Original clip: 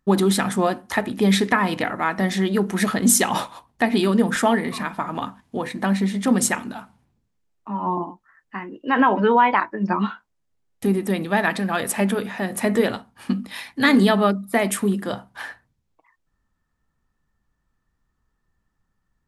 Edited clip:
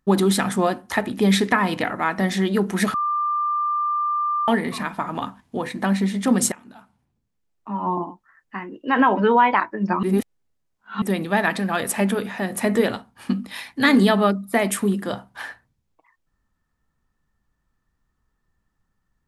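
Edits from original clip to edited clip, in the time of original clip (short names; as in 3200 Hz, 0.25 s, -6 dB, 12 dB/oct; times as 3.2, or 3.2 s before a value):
2.94–4.48 bleep 1190 Hz -19.5 dBFS
6.52–7.73 fade in, from -20.5 dB
10.03–11.02 reverse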